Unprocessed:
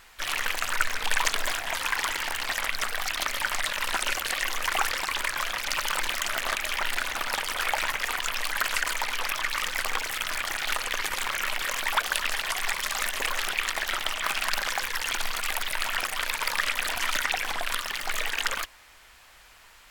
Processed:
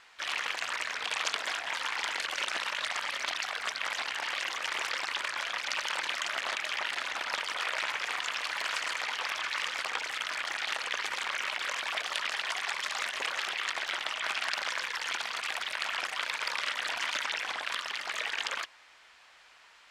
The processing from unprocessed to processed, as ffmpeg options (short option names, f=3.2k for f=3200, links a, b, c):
-filter_complex "[0:a]asettb=1/sr,asplit=3[a][b][c];[a]atrim=end=7.804[d];[b]atrim=start=7.8:end=9.82,asetpts=PTS-STARTPTS,afade=t=in:d=0.004:c=qsin,afade=t=out:st=2.016:d=0.004:c=qsin,aecho=1:1:77:0.299,atrim=end_sample=89082[e];[c]atrim=start=9.816[f];[d][e]acrossfade=d=0.004:c1=hsin:c2=qsin[g];[g][f]acrossfade=d=0.004:c1=qsin:c2=hsin,asplit=3[h][i][j];[h]atrim=end=2.182[k];[i]atrim=start=2.178:end=4.332,asetpts=PTS-STARTPTS,areverse[l];[j]atrim=start=4.328[m];[k][l]acrossfade=d=0.004:c1=hsin:c2=hsin[n];[n][m]acrossfade=d=0.004:c1=hsin:c2=hsin,lowpass=5.6k,afftfilt=real='re*lt(hypot(re,im),0.178)':imag='im*lt(hypot(re,im),0.178)':win_size=1024:overlap=0.75,highpass=f=510:p=1,volume=-2.5dB"